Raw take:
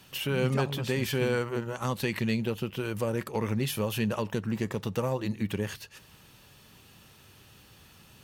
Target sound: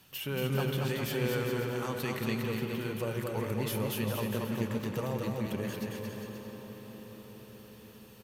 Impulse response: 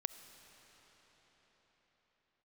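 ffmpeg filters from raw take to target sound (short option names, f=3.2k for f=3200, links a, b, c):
-filter_complex "[0:a]equalizer=f=14k:w=1.4:g=7,aecho=1:1:230|402.5|531.9|628.9|701.7:0.631|0.398|0.251|0.158|0.1[a];[1:a]atrim=start_sample=2205,asetrate=29106,aresample=44100[b];[a][b]afir=irnorm=-1:irlink=0,volume=-6dB"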